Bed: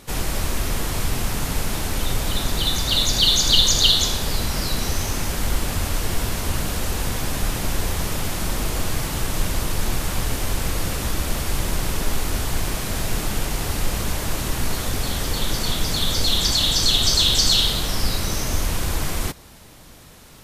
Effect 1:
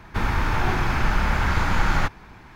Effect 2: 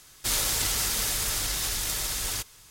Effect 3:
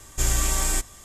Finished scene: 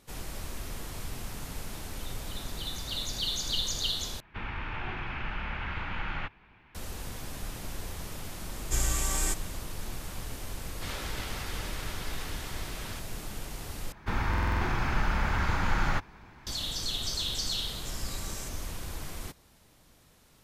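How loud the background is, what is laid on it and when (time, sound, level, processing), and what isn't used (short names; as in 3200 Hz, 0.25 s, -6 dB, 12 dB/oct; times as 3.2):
bed -15 dB
4.2 replace with 1 -15 dB + synth low-pass 2800 Hz, resonance Q 2.9
8.53 add 3 -6 dB + vocal rider
10.57 add 2 -5.5 dB + LPF 2800 Hz
13.92 replace with 1 -6.5 dB + stuck buffer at 0.37, samples 2048, times 6
17.68 add 3 -5.5 dB + compressor, threshold -32 dBFS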